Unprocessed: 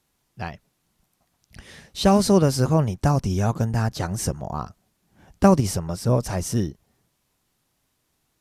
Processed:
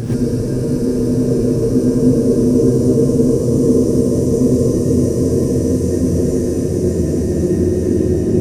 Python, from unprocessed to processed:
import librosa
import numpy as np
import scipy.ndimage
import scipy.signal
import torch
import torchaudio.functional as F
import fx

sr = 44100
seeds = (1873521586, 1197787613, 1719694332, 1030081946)

y = fx.local_reverse(x, sr, ms=192.0)
y = fx.low_shelf_res(y, sr, hz=540.0, db=12.5, q=3.0)
y = fx.paulstretch(y, sr, seeds[0], factor=23.0, window_s=0.5, from_s=6.17)
y = fx.rev_gated(y, sr, seeds[1], gate_ms=150, shape='rising', drr_db=-6.5)
y = F.gain(torch.from_numpy(y), -9.5).numpy()